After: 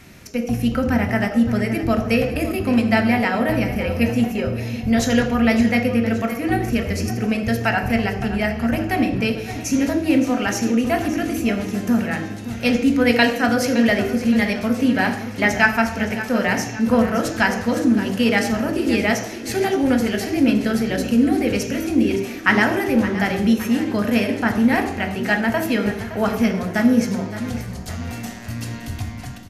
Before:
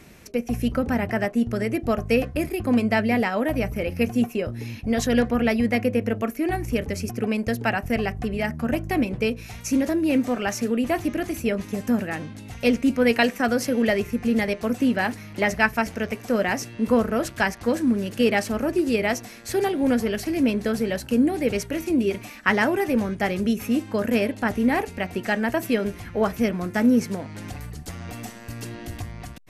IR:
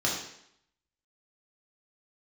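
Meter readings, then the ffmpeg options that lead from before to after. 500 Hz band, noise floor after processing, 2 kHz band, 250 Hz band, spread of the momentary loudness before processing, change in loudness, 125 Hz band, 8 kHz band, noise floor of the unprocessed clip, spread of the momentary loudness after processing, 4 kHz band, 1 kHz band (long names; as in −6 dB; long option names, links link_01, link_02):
+1.5 dB, −32 dBFS, +5.5 dB, +4.5 dB, 9 LU, +4.0 dB, +6.0 dB, +4.5 dB, −41 dBFS, 8 LU, +5.5 dB, +4.0 dB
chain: -filter_complex "[0:a]aecho=1:1:567|1134|1701|2268|2835:0.211|0.0993|0.0467|0.0219|0.0103,asplit=2[link_01][link_02];[1:a]atrim=start_sample=2205[link_03];[link_02][link_03]afir=irnorm=-1:irlink=0,volume=-11.5dB[link_04];[link_01][link_04]amix=inputs=2:normalize=0,volume=1dB"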